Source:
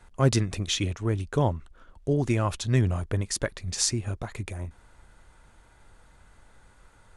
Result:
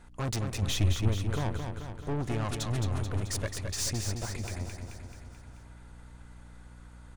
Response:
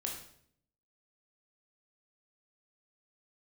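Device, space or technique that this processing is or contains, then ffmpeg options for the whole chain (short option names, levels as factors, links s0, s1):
valve amplifier with mains hum: -filter_complex "[0:a]aeval=exprs='(tanh(28.2*val(0)+0.35)-tanh(0.35))/28.2':c=same,aeval=exprs='val(0)+0.00178*(sin(2*PI*60*n/s)+sin(2*PI*2*60*n/s)/2+sin(2*PI*3*60*n/s)/3+sin(2*PI*4*60*n/s)/4+sin(2*PI*5*60*n/s)/5)':c=same,asettb=1/sr,asplit=3[s0][s1][s2];[s0]atrim=end=0.624[s3];[s1]atrim=start=0.62:end=1.09,asetpts=PTS-STARTPTS,afade=t=in:d=0.004:c=qsin,afade=t=out:st=0.466:d=0.004:c=qsin,lowshelf=f=160:g=10.5[s4];[s2]atrim=start=1.086[s5];[s3][s4]acrossfade=d=0.004:c1=hsin:c2=qsin[s6];[s6][s5]acrossfade=d=0.004:c1=qsin:c2=hsin,aecho=1:1:217|434|651|868|1085|1302|1519|1736:0.501|0.296|0.174|0.103|0.0607|0.0358|0.0211|0.0125"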